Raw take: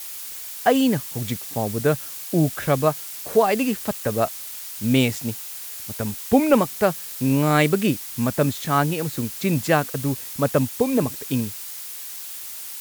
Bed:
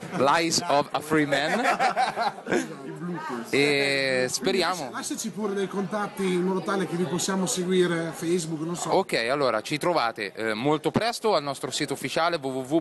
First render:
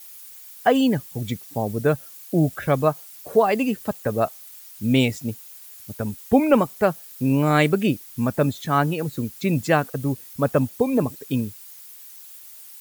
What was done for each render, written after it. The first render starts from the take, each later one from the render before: denoiser 12 dB, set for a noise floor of -35 dBFS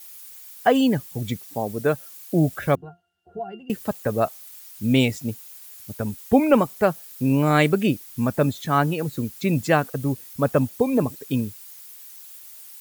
1.43–2.11 low shelf 150 Hz -9.5 dB; 2.75–3.7 octave resonator F, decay 0.18 s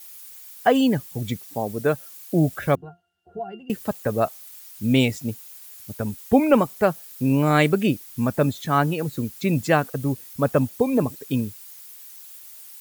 nothing audible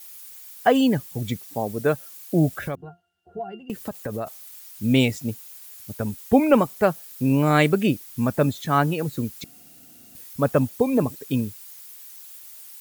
2.54–4.27 compressor, threshold -25 dBFS; 9.44–10.15 room tone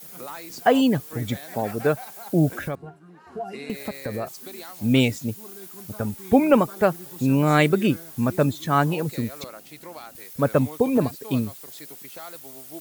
add bed -17 dB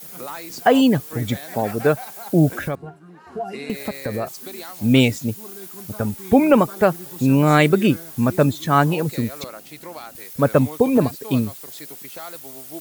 gain +4 dB; limiter -3 dBFS, peak gain reduction 2 dB

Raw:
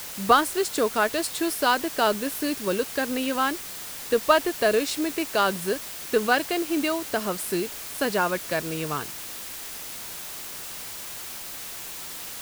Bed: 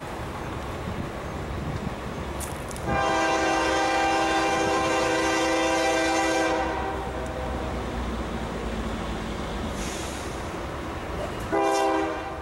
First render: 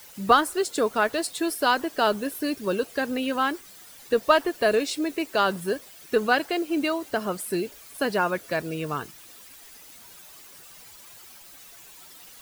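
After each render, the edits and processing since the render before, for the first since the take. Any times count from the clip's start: denoiser 13 dB, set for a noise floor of -37 dBFS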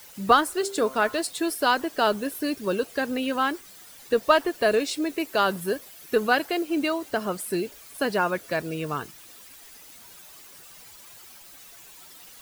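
0.54–1.2 de-hum 131.5 Hz, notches 12; 5.17–6.63 bell 12000 Hz +7 dB 0.23 oct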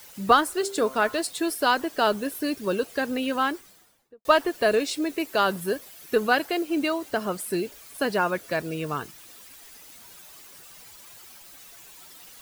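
3.42–4.25 studio fade out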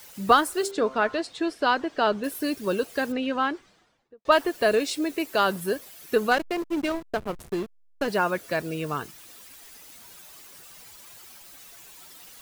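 0.71–2.24 air absorption 130 m; 3.12–4.32 air absorption 130 m; 6.31–8.08 backlash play -22.5 dBFS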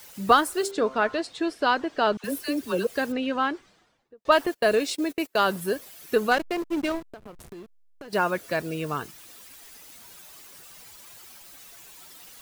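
2.17–2.87 dispersion lows, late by 71 ms, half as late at 860 Hz; 4.46–5.43 gate -34 dBFS, range -28 dB; 7.04–8.13 compressor 8:1, threshold -39 dBFS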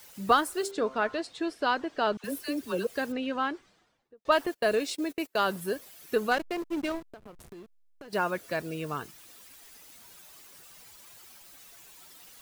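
gain -4.5 dB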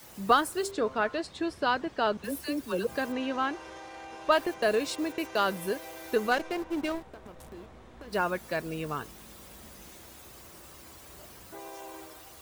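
add bed -21.5 dB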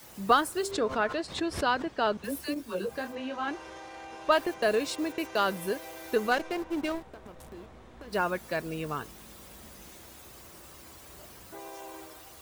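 0.56–1.9 backwards sustainer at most 130 dB/s; 2.54–3.48 detuned doubles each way 28 cents

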